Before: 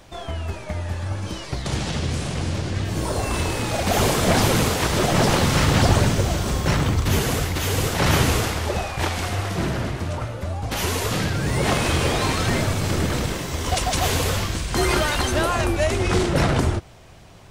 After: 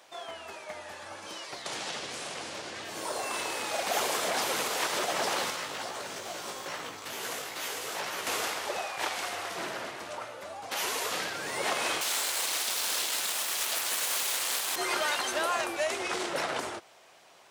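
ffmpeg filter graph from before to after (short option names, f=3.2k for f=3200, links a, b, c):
-filter_complex "[0:a]asettb=1/sr,asplit=3[a][b][c];[a]atrim=end=5.504[d];[b]atrim=start=5.5:end=8.27,asetpts=PTS-STARTPTS,afade=t=in:d=0.004:c=qsin,afade=t=out:st=2.766:d=0.004:c=qsin,acompressor=threshold=-18dB:ratio=16:attack=3.2:release=140:knee=1:detection=peak,flanger=delay=16:depth=3.5:speed=2.3,volume=19dB,asoftclip=hard,volume=-19dB[e];[c]atrim=start=8.266[f];[d][e]acrossfade=d=0.004:c1=hsin:c2=qsin[g];[g][f]acrossfade=d=0.004:c1=qsin:c2=hsin,asettb=1/sr,asplit=3[h][i][j];[h]atrim=end=12.014[k];[i]atrim=start=12.01:end=14.76,asetpts=PTS-STARTPTS,afade=t=in:d=0.004:c=qsin,afade=t=out:st=2.746:d=0.004:c=qsin,highpass=f=67:w=0.5412,highpass=f=67:w=1.3066,highshelf=f=2.3k:t=q:w=1.5:g=13,aeval=exprs='abs(val(0))':c=same[l];[j]atrim=start=14.756[m];[k][l]acrossfade=d=0.004:c1=hsin:c2=qsin[n];[n][m]acrossfade=d=0.004:c1=qsin:c2=hsin,alimiter=limit=-11dB:level=0:latency=1:release=84,highpass=560,volume=-5dB"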